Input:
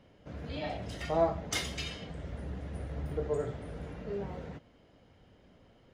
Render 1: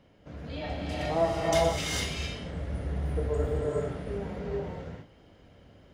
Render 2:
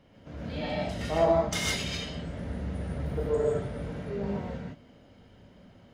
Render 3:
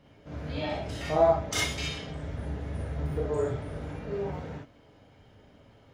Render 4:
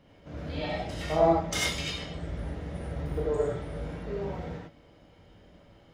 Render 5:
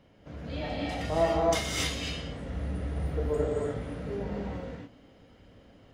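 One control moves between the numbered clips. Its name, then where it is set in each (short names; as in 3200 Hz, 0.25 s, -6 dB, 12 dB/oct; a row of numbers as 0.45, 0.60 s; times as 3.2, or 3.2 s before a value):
non-linear reverb, gate: 480, 180, 80, 120, 310 ms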